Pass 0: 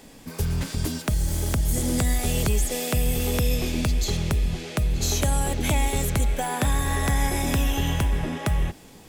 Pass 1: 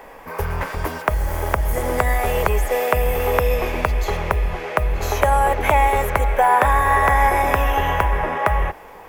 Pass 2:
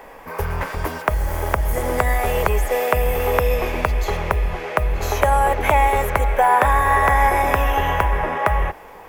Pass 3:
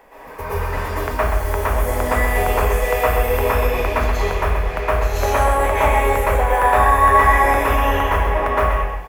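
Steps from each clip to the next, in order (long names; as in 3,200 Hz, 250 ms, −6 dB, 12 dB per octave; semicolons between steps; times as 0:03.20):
octave-band graphic EQ 125/250/500/1,000/2,000/4,000/8,000 Hz −9/−10/+7/+12/+7/−10/−12 dB; level +4 dB
no processing that can be heard
on a send: single-tap delay 130 ms −8 dB; on the sum: dense smooth reverb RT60 0.63 s, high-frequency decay 0.9×, pre-delay 105 ms, DRR −9.5 dB; level −8.5 dB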